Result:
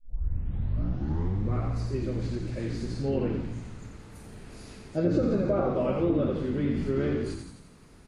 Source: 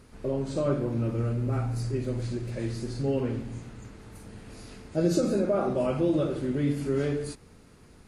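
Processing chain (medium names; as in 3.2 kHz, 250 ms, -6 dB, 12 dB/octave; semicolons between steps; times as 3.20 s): tape start-up on the opening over 1.68 s; frequency-shifting echo 86 ms, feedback 56%, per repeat -56 Hz, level -5 dB; low-pass that closes with the level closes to 2.2 kHz, closed at -18.5 dBFS; trim -1.5 dB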